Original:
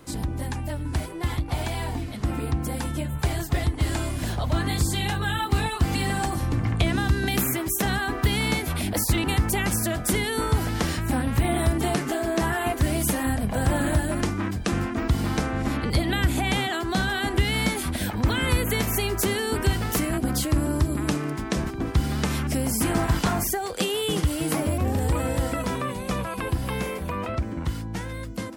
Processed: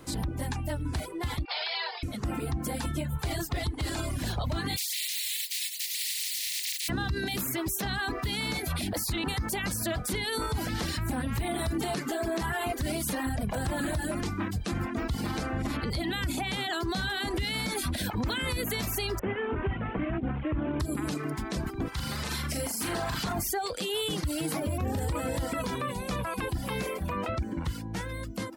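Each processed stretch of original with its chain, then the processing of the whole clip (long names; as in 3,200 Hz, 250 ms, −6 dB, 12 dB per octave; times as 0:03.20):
0:01.45–0:02.03: linear-phase brick-wall band-pass 380–5,400 Hz + tilt shelving filter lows −9.5 dB, about 910 Hz
0:04.76–0:06.88: compressing power law on the bin magnitudes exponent 0.12 + Butterworth high-pass 1,900 Hz 72 dB per octave
0:19.19–0:20.80: variable-slope delta modulation 16 kbit/s + high-frequency loss of the air 240 metres
0:21.88–0:23.24: low-shelf EQ 430 Hz −10 dB + flutter between parallel walls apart 6.9 metres, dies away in 0.54 s
whole clip: reverb reduction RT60 0.74 s; dynamic equaliser 4,200 Hz, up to +6 dB, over −48 dBFS, Q 2.6; brickwall limiter −22.5 dBFS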